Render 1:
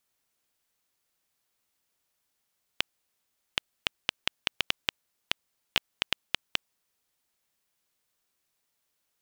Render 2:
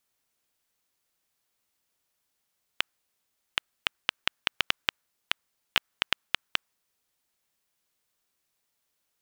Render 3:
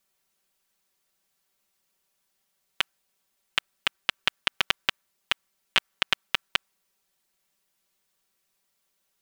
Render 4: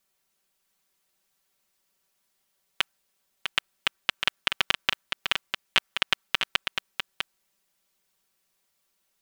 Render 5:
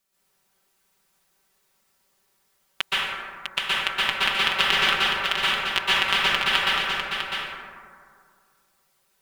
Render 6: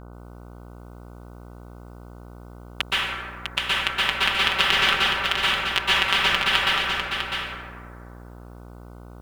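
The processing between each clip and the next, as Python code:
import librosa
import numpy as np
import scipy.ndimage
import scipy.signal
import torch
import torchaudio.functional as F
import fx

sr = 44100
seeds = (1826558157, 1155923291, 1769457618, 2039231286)

y1 = fx.dynamic_eq(x, sr, hz=1400.0, q=1.1, threshold_db=-52.0, ratio=4.0, max_db=7)
y2 = y1 + 0.76 * np.pad(y1, (int(5.2 * sr / 1000.0), 0))[:len(y1)]
y2 = F.gain(torch.from_numpy(y2), 1.0).numpy()
y3 = y2 + 10.0 ** (-6.0 / 20.0) * np.pad(y2, (int(651 * sr / 1000.0), 0))[:len(y2)]
y4 = fx.rev_plate(y3, sr, seeds[0], rt60_s=2.1, hf_ratio=0.35, predelay_ms=110, drr_db=-10.0)
y4 = F.gain(torch.from_numpy(y4), -1.5).numpy()
y5 = fx.dmg_buzz(y4, sr, base_hz=60.0, harmonics=25, level_db=-43.0, tilt_db=-5, odd_only=False)
y5 = F.gain(torch.from_numpy(y5), 1.0).numpy()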